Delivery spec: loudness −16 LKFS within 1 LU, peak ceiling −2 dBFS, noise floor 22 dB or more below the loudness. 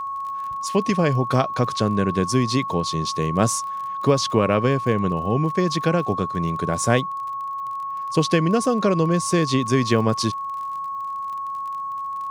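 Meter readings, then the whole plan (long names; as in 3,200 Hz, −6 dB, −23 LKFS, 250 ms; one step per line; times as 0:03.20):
crackle rate 33 per second; interfering tone 1,100 Hz; level of the tone −26 dBFS; integrated loudness −22.0 LKFS; sample peak −3.5 dBFS; target loudness −16.0 LKFS
→ click removal
notch filter 1,100 Hz, Q 30
level +6 dB
brickwall limiter −2 dBFS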